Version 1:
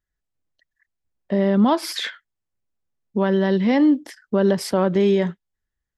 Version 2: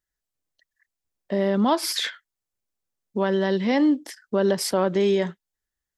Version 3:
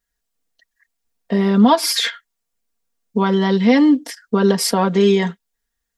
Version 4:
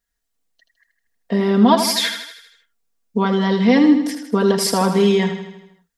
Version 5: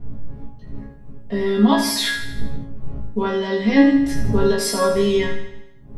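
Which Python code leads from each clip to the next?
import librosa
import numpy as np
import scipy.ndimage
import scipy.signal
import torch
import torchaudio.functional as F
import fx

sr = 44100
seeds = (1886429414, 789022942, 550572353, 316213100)

y1 = fx.bass_treble(x, sr, bass_db=-6, treble_db=6)
y1 = y1 * librosa.db_to_amplitude(-1.5)
y2 = y1 + 1.0 * np.pad(y1, (int(4.3 * sr / 1000.0), 0))[:len(y1)]
y2 = y2 * librosa.db_to_amplitude(4.5)
y3 = fx.echo_feedback(y2, sr, ms=79, feedback_pct=56, wet_db=-8.5)
y3 = y3 * librosa.db_to_amplitude(-1.0)
y4 = fx.dmg_wind(y3, sr, seeds[0], corner_hz=100.0, level_db=-24.0)
y4 = fx.resonator_bank(y4, sr, root=49, chord='fifth', decay_s=0.22)
y4 = fx.room_flutter(y4, sr, wall_m=3.1, rt60_s=0.29)
y4 = y4 * librosa.db_to_amplitude(7.5)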